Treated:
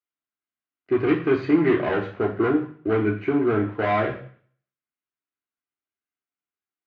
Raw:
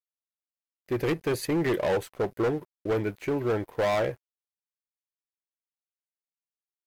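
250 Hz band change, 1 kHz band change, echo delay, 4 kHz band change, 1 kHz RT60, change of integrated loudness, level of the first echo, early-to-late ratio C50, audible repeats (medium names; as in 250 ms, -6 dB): +9.0 dB, +5.5 dB, no echo, -2.0 dB, 0.50 s, +5.5 dB, no echo, 9.5 dB, no echo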